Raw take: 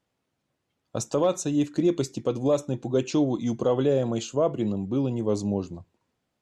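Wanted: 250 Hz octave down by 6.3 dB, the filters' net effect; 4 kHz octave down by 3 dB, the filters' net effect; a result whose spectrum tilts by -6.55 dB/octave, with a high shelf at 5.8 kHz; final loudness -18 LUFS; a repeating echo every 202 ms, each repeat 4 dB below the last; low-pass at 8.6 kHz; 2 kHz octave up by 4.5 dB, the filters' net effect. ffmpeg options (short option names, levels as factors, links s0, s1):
-af "lowpass=8600,equalizer=f=250:t=o:g=-8.5,equalizer=f=2000:t=o:g=8.5,equalizer=f=4000:t=o:g=-5,highshelf=f=5800:g=-5.5,aecho=1:1:202|404|606|808|1010|1212|1414|1616|1818:0.631|0.398|0.25|0.158|0.0994|0.0626|0.0394|0.0249|0.0157,volume=2.82"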